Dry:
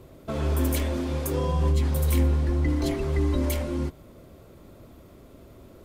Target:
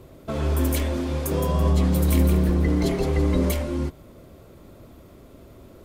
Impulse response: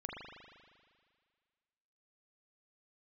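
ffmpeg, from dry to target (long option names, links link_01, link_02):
-filter_complex "[0:a]asettb=1/sr,asplit=3[link_01][link_02][link_03];[link_01]atrim=end=1.144[link_04];[link_02]atrim=start=1.14:end=3.53,asetpts=PTS-STARTPTS,afade=type=in:duration=0.004:curve=qsin,afade=type=out:start_time=2.386:duration=0.004:curve=qsin,asplit=5[link_05][link_06][link_07][link_08][link_09];[link_06]adelay=166,afreqshift=110,volume=-6dB[link_10];[link_07]adelay=332,afreqshift=220,volume=-15.6dB[link_11];[link_08]adelay=498,afreqshift=330,volume=-25.3dB[link_12];[link_09]adelay=664,afreqshift=440,volume=-34.9dB[link_13];[link_05][link_10][link_11][link_12][link_13]amix=inputs=5:normalize=0,atrim=end_sample=105399[link_14];[link_03]atrim=start=3.526[link_15];[link_04][link_14]acrossfade=duration=0.004:curve1=hsin:curve2=qsin[link_16];[link_16][link_15]acrossfade=duration=0.004:curve1=qsin:curve2=hsin,volume=2dB"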